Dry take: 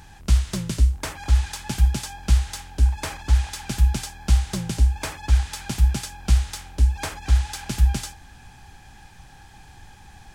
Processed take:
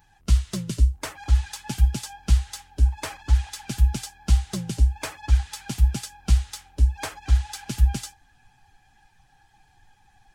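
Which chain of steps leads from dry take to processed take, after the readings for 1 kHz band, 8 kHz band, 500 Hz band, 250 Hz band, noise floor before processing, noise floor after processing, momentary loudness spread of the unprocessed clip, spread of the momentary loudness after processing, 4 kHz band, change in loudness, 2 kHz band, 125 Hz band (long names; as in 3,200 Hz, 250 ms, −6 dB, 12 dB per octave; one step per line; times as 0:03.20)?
−3.0 dB, −2.5 dB, −2.5 dB, −2.0 dB, −47 dBFS, −61 dBFS, 8 LU, 10 LU, −3.0 dB, −1.5 dB, −4.0 dB, −1.5 dB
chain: spectral dynamics exaggerated over time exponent 1.5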